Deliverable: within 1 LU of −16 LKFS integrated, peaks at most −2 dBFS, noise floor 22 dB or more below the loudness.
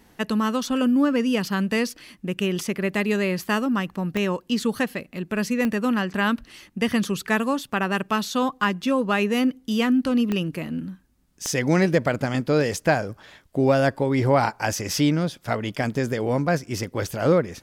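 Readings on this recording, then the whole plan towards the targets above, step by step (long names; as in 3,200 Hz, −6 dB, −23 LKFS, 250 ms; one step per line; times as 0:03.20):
number of clicks 4; integrated loudness −23.5 LKFS; sample peak −7.5 dBFS; target loudness −16.0 LKFS
→ click removal
level +7.5 dB
brickwall limiter −2 dBFS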